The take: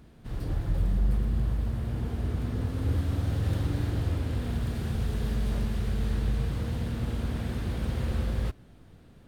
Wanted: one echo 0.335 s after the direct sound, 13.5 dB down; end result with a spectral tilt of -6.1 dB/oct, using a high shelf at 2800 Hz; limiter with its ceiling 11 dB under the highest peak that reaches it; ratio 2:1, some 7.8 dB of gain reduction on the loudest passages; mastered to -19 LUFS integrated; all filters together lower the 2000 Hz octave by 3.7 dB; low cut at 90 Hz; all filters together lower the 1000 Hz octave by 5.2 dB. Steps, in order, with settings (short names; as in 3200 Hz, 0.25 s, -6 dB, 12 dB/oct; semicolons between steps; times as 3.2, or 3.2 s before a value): HPF 90 Hz; bell 1000 Hz -7 dB; bell 2000 Hz -5.5 dB; high shelf 2800 Hz +7.5 dB; compressor 2:1, threshold -41 dBFS; limiter -38 dBFS; echo 0.335 s -13.5 dB; gain +27.5 dB